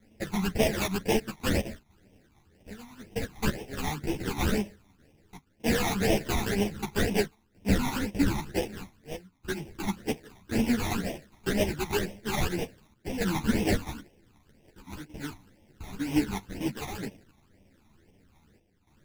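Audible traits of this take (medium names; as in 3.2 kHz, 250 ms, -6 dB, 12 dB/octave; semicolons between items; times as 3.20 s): aliases and images of a low sample rate 1.2 kHz, jitter 20%; phasing stages 12, 2 Hz, lowest notch 490–1400 Hz; chopped level 0.53 Hz, depth 65%, duty 85%; a shimmering, thickened sound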